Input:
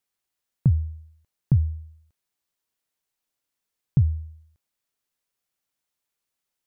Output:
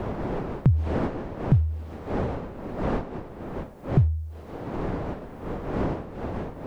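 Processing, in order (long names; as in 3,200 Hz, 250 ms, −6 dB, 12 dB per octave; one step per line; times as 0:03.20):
wind on the microphone 510 Hz −40 dBFS
multiband upward and downward compressor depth 70%
level +6.5 dB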